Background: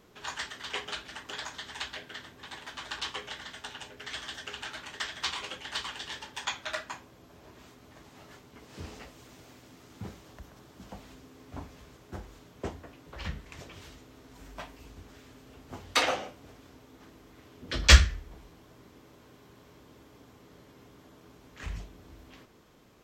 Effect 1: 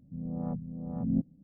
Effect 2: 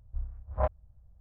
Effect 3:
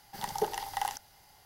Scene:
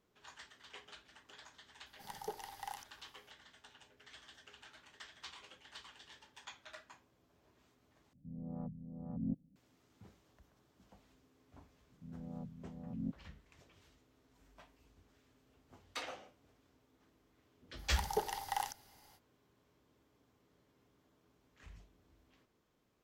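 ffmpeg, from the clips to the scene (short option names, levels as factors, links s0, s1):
-filter_complex "[3:a]asplit=2[s0][s1];[1:a]asplit=2[s2][s3];[0:a]volume=0.126,asplit=2[s4][s5];[s4]atrim=end=8.134[s6];[s2]atrim=end=1.43,asetpts=PTS-STARTPTS,volume=0.335[s7];[s5]atrim=start=9.556[s8];[s0]atrim=end=1.45,asetpts=PTS-STARTPTS,volume=0.237,afade=t=in:d=0.004:c=hsin,afade=t=out:st=1.446:d=0.004:c=hsin,adelay=1860[s9];[s3]atrim=end=1.43,asetpts=PTS-STARTPTS,volume=0.251,afade=t=in:d=0.004:c=hsin,afade=t=out:st=1.426:d=0.004:c=hsin,adelay=11900[s10];[s1]atrim=end=1.45,asetpts=PTS-STARTPTS,volume=0.596,afade=t=in:d=0.05,afade=t=out:st=1.4:d=0.05,adelay=17750[s11];[s6][s7]acrossfade=d=0.004:c1=hsin:c2=hsin[s12];[s12][s8]acrossfade=d=0.004:c1=hsin:c2=hsin[s13];[s13][s9][s10][s11]amix=inputs=4:normalize=0"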